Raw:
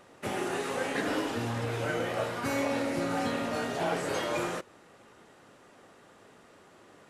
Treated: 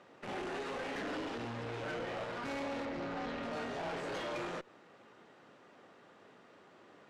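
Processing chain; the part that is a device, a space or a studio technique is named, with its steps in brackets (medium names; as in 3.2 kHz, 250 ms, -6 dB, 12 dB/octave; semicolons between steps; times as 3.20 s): valve radio (band-pass 130–4600 Hz; valve stage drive 33 dB, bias 0.45; transformer saturation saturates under 260 Hz); 2.85–3.43 s: distance through air 75 m; trim -1.5 dB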